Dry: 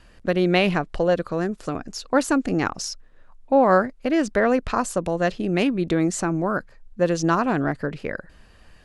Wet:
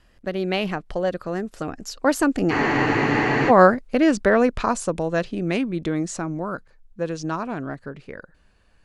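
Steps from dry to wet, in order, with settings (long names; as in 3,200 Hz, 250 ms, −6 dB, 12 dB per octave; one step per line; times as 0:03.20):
source passing by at 0:03.44, 15 m/s, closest 16 metres
frozen spectrum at 0:02.52, 0.98 s
level +4.5 dB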